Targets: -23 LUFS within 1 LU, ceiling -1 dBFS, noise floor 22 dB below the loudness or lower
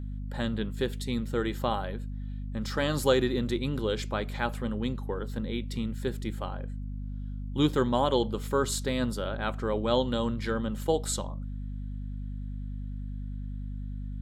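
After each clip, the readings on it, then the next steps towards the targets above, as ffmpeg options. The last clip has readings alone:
hum 50 Hz; harmonics up to 250 Hz; hum level -33 dBFS; loudness -31.0 LUFS; peak -10.0 dBFS; loudness target -23.0 LUFS
-> -af "bandreject=f=50:t=h:w=4,bandreject=f=100:t=h:w=4,bandreject=f=150:t=h:w=4,bandreject=f=200:t=h:w=4,bandreject=f=250:t=h:w=4"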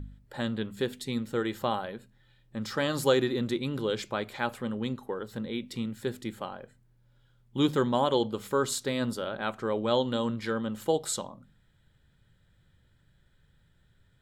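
hum none; loudness -30.5 LUFS; peak -10.0 dBFS; loudness target -23.0 LUFS
-> -af "volume=7.5dB"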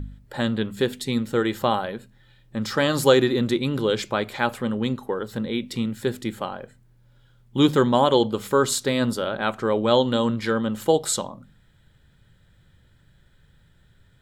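loudness -23.0 LUFS; peak -2.5 dBFS; noise floor -58 dBFS

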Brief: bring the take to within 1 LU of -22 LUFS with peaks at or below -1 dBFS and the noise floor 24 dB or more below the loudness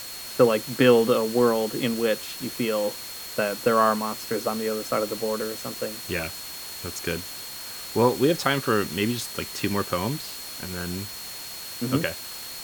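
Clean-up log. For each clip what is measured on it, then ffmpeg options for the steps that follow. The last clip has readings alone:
steady tone 4300 Hz; tone level -40 dBFS; noise floor -37 dBFS; noise floor target -50 dBFS; loudness -25.5 LUFS; peak -4.5 dBFS; loudness target -22.0 LUFS
-> -af "bandreject=f=4.3k:w=30"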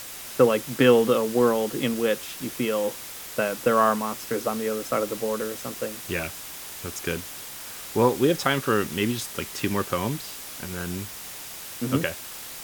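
steady tone none; noise floor -39 dBFS; noise floor target -50 dBFS
-> -af "afftdn=nr=11:nf=-39"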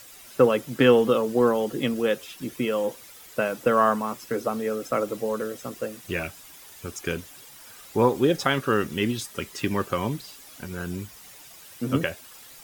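noise floor -47 dBFS; noise floor target -50 dBFS
-> -af "afftdn=nr=6:nf=-47"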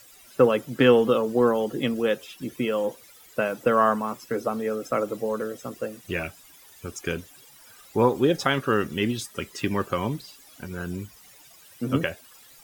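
noise floor -52 dBFS; loudness -25.5 LUFS; peak -5.0 dBFS; loudness target -22.0 LUFS
-> -af "volume=3.5dB"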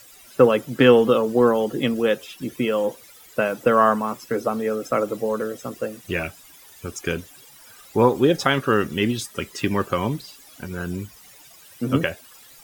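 loudness -22.0 LUFS; peak -1.5 dBFS; noise floor -48 dBFS

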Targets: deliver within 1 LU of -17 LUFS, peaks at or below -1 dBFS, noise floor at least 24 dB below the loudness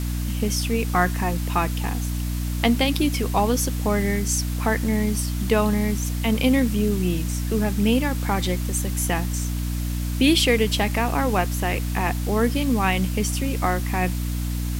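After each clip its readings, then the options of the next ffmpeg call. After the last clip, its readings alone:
hum 60 Hz; harmonics up to 300 Hz; hum level -23 dBFS; noise floor -26 dBFS; noise floor target -47 dBFS; loudness -23.0 LUFS; peak -4.0 dBFS; loudness target -17.0 LUFS
-> -af "bandreject=f=60:t=h:w=6,bandreject=f=120:t=h:w=6,bandreject=f=180:t=h:w=6,bandreject=f=240:t=h:w=6,bandreject=f=300:t=h:w=6"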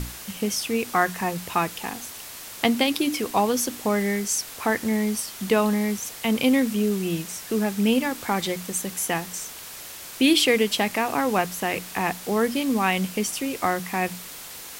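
hum none; noise floor -40 dBFS; noise floor target -48 dBFS
-> -af "afftdn=nr=8:nf=-40"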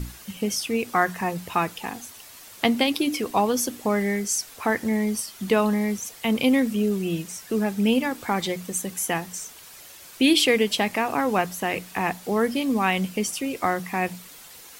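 noise floor -45 dBFS; noise floor target -49 dBFS
-> -af "afftdn=nr=6:nf=-45"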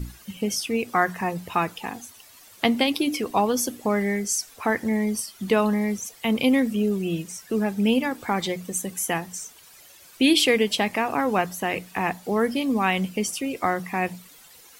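noise floor -50 dBFS; loudness -24.5 LUFS; peak -4.5 dBFS; loudness target -17.0 LUFS
-> -af "volume=7.5dB,alimiter=limit=-1dB:level=0:latency=1"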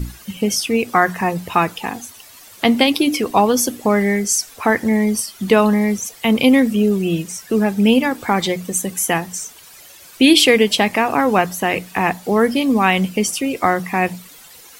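loudness -17.0 LUFS; peak -1.0 dBFS; noise floor -43 dBFS

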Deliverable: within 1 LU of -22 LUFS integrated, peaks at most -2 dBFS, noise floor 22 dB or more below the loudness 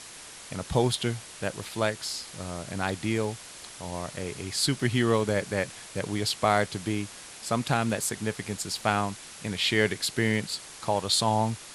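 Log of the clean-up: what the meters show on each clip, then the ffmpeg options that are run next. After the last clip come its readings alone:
noise floor -45 dBFS; noise floor target -51 dBFS; loudness -28.5 LUFS; peak -7.5 dBFS; loudness target -22.0 LUFS
-> -af "afftdn=nr=6:nf=-45"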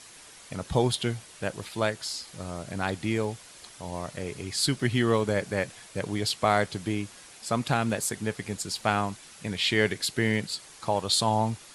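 noise floor -50 dBFS; noise floor target -51 dBFS
-> -af "afftdn=nr=6:nf=-50"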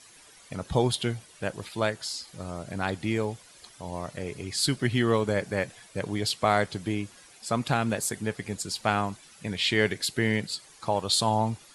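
noise floor -53 dBFS; loudness -28.5 LUFS; peak -7.5 dBFS; loudness target -22.0 LUFS
-> -af "volume=6.5dB,alimiter=limit=-2dB:level=0:latency=1"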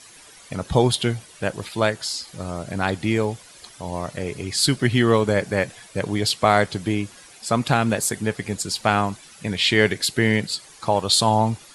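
loudness -22.0 LUFS; peak -2.0 dBFS; noise floor -47 dBFS

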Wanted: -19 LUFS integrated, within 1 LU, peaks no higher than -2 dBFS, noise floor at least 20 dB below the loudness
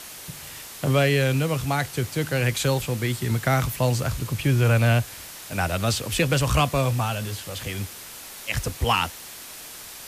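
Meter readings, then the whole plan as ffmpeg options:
noise floor -40 dBFS; noise floor target -44 dBFS; loudness -24.0 LUFS; peak -10.0 dBFS; loudness target -19.0 LUFS
-> -af "afftdn=nr=6:nf=-40"
-af "volume=5dB"

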